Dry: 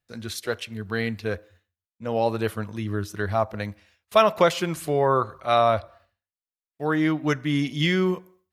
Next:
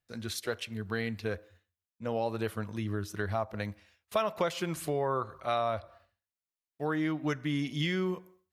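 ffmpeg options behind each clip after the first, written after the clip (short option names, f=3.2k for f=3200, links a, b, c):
-af "acompressor=threshold=-26dB:ratio=2.5,volume=-3.5dB"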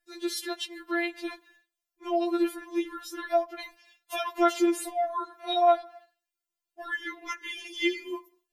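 -af "afftfilt=real='re*4*eq(mod(b,16),0)':imag='im*4*eq(mod(b,16),0)':win_size=2048:overlap=0.75,volume=7dB"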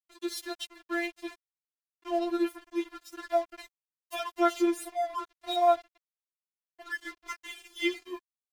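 -af "aeval=exprs='sgn(val(0))*max(abs(val(0))-0.0075,0)':c=same,volume=-1.5dB"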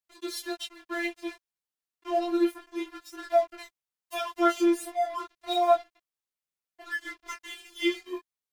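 -af "flanger=delay=18.5:depth=5.4:speed=0.33,volume=5dB"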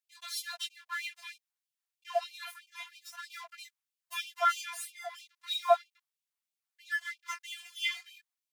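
-af "afftfilt=real='re*gte(b*sr/1024,670*pow(2300/670,0.5+0.5*sin(2*PI*3.1*pts/sr)))':imag='im*gte(b*sr/1024,670*pow(2300/670,0.5+0.5*sin(2*PI*3.1*pts/sr)))':win_size=1024:overlap=0.75"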